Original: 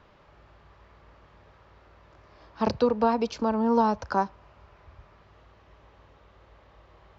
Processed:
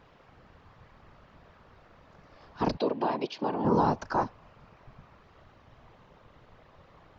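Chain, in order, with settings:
in parallel at 0 dB: brickwall limiter −18.5 dBFS, peak gain reduction 7.5 dB
on the sum: random phases in short frames
0:02.77–0:03.65: loudspeaker in its box 280–4,800 Hz, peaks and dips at 520 Hz −5 dB, 1,300 Hz −10 dB, 3,100 Hz +4 dB
level −6.5 dB

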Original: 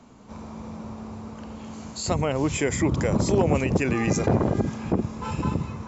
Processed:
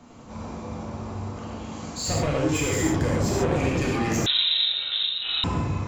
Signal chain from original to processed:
soft clipping −25.5 dBFS, distortion −7 dB
reverb whose tail is shaped and stops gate 160 ms flat, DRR −4 dB
0:04.26–0:05.44: voice inversion scrambler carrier 3,900 Hz

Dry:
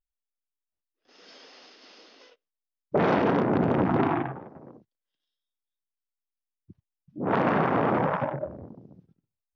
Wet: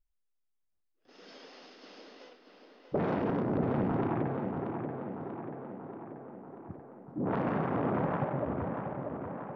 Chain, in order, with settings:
spectral tilt −2 dB per octave
downward compressor 2.5 to 1, threshold −33 dBFS, peak gain reduction 11.5 dB
on a send: tape delay 635 ms, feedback 70%, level −4.5 dB, low-pass 2,800 Hz

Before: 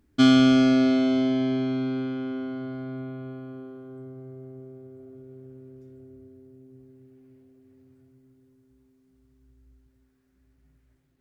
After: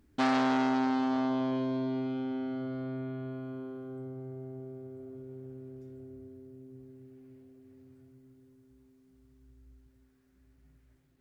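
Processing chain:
dynamic equaliser 1,500 Hz, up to −6 dB, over −44 dBFS, Q 1.1
in parallel at −1 dB: downward compressor, threshold −36 dBFS, peak gain reduction 20 dB
on the sum: saturating transformer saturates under 1,400 Hz
level −5 dB

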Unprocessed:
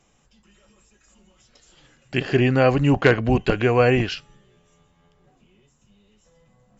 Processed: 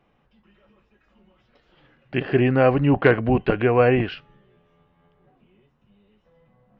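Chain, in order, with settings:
Gaussian smoothing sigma 2.9 samples
low-shelf EQ 99 Hz −6.5 dB
level +1 dB

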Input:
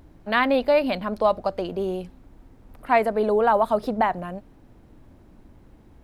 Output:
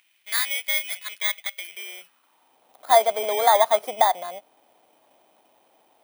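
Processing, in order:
samples in bit-reversed order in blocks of 16 samples
high-pass filter sweep 2,200 Hz → 710 Hz, 0:01.63–0:02.66
level −2 dB

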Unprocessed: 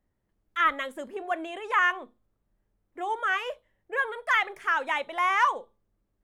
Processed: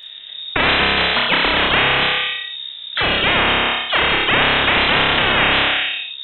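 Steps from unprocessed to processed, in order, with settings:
voice inversion scrambler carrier 3,700 Hz
flutter between parallel walls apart 5.1 metres, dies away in 0.66 s
every bin compressed towards the loudest bin 10 to 1
level +6 dB

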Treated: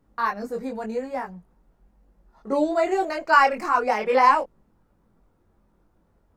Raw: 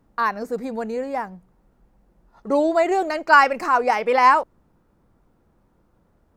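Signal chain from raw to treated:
multi-voice chorus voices 4, 0.9 Hz, delay 21 ms, depth 2.7 ms

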